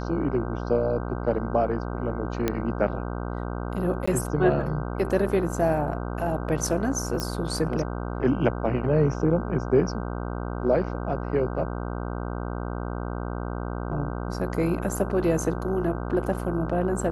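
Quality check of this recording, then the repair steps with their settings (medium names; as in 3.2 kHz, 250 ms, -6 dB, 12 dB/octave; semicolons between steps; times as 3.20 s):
buzz 60 Hz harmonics 26 -31 dBFS
2.48 s: pop -10 dBFS
4.06–4.08 s: dropout 15 ms
7.20 s: pop -13 dBFS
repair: de-click; de-hum 60 Hz, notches 26; interpolate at 4.06 s, 15 ms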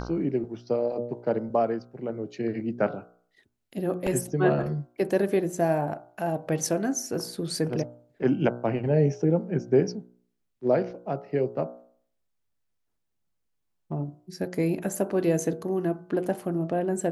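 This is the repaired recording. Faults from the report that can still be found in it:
7.20 s: pop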